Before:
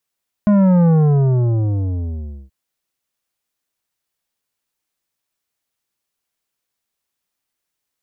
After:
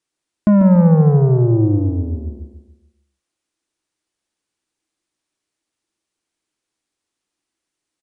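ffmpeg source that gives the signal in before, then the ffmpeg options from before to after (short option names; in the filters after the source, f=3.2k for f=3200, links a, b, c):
-f lavfi -i "aevalsrc='0.299*clip((2.03-t)/1.62,0,1)*tanh(3.35*sin(2*PI*210*2.03/log(65/210)*(exp(log(65/210)*t/2.03)-1)))/tanh(3.35)':d=2.03:s=44100"
-af "equalizer=f=320:t=o:w=0.46:g=12,aecho=1:1:143|286|429|572|715:0.398|0.167|0.0702|0.0295|0.0124,aresample=22050,aresample=44100"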